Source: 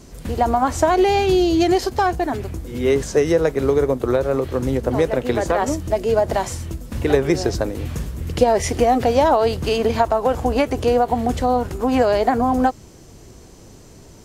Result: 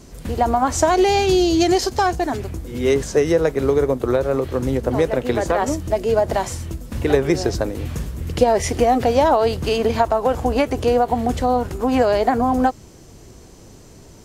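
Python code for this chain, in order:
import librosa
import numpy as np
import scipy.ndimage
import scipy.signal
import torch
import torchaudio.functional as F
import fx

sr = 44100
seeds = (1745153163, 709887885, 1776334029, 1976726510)

y = fx.dynamic_eq(x, sr, hz=6200.0, q=1.0, threshold_db=-45.0, ratio=4.0, max_db=7, at=(0.69, 2.94))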